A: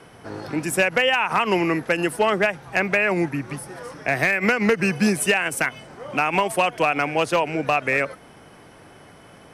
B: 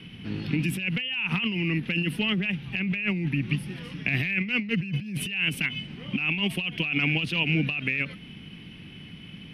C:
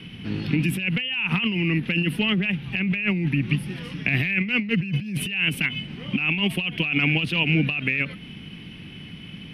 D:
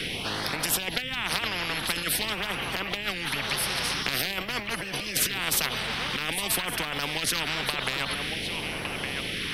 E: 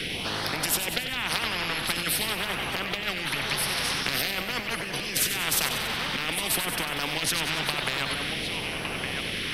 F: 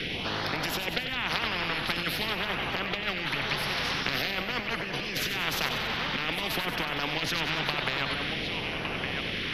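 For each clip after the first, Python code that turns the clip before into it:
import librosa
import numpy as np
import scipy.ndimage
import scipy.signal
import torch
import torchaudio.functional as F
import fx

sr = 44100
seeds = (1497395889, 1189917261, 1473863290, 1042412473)

y1 = fx.curve_eq(x, sr, hz=(120.0, 190.0, 610.0, 1500.0, 2800.0, 7300.0, 13000.0), db=(0, 7, -22, -15, 8, -22, -12))
y1 = fx.over_compress(y1, sr, threshold_db=-27.0, ratio=-1.0)
y1 = fx.end_taper(y1, sr, db_per_s=220.0)
y2 = fx.dynamic_eq(y1, sr, hz=6100.0, q=1.1, threshold_db=-46.0, ratio=4.0, max_db=-5)
y2 = F.gain(torch.from_numpy(y2), 4.0).numpy()
y3 = fx.phaser_stages(y2, sr, stages=2, low_hz=280.0, high_hz=2800.0, hz=0.48, feedback_pct=5)
y3 = y3 + 10.0 ** (-21.0 / 20.0) * np.pad(y3, (int(1162 * sr / 1000.0), 0))[:len(y3)]
y3 = fx.spectral_comp(y3, sr, ratio=10.0)
y4 = fx.echo_feedback(y3, sr, ms=94, feedback_pct=60, wet_db=-9)
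y5 = np.convolve(y4, np.full(5, 1.0 / 5))[:len(y4)]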